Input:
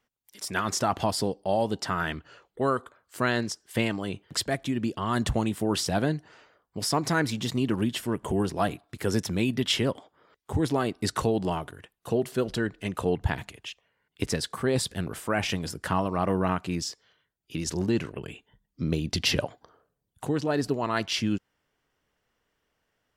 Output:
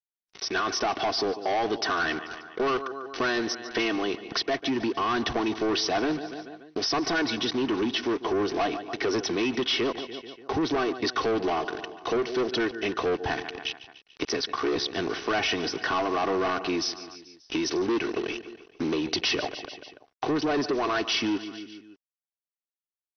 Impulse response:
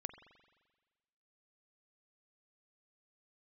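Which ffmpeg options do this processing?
-filter_complex "[0:a]asplit=3[link_01][link_02][link_03];[link_01]afade=type=out:start_time=13.39:duration=0.02[link_04];[link_02]aeval=exprs='val(0)*sin(2*PI*34*n/s)':channel_layout=same,afade=type=in:start_time=13.39:duration=0.02,afade=type=out:start_time=14.94:duration=0.02[link_05];[link_03]afade=type=in:start_time=14.94:duration=0.02[link_06];[link_04][link_05][link_06]amix=inputs=3:normalize=0,acrossover=split=200 6700:gain=0.0708 1 0.126[link_07][link_08][link_09];[link_07][link_08][link_09]amix=inputs=3:normalize=0,aecho=1:1:2.7:0.62,acrusher=bits=6:mix=0:aa=0.5,asplit=2[link_10][link_11];[link_11]aecho=0:1:145|290|435|580:0.1|0.056|0.0314|0.0176[link_12];[link_10][link_12]amix=inputs=2:normalize=0,dynaudnorm=framelen=160:gausssize=5:maxgain=11.5dB,asoftclip=type=tanh:threshold=-18dB,acompressor=threshold=-31dB:ratio=2,volume=2dB" -ar 22050 -c:a mp2 -b:a 64k

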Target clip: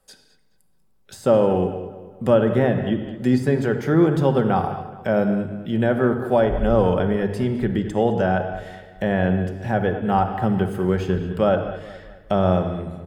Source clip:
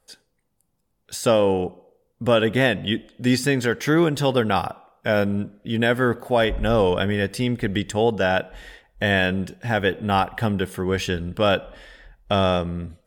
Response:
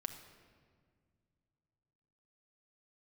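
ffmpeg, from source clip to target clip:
-filter_complex "[1:a]atrim=start_sample=2205,afade=type=out:start_time=0.28:duration=0.01,atrim=end_sample=12789[link_01];[0:a][link_01]afir=irnorm=-1:irlink=0,acrossover=split=110|1300[link_02][link_03][link_04];[link_04]acompressor=threshold=-47dB:ratio=4[link_05];[link_02][link_03][link_05]amix=inputs=3:normalize=0,asplit=2[link_06][link_07];[link_07]adelay=212,lowpass=frequency=4100:poles=1,volume=-14.5dB,asplit=2[link_08][link_09];[link_09]adelay=212,lowpass=frequency=4100:poles=1,volume=0.44,asplit=2[link_10][link_11];[link_11]adelay=212,lowpass=frequency=4100:poles=1,volume=0.44,asplit=2[link_12][link_13];[link_13]adelay=212,lowpass=frequency=4100:poles=1,volume=0.44[link_14];[link_06][link_08][link_10][link_12][link_14]amix=inputs=5:normalize=0,volume=3.5dB"

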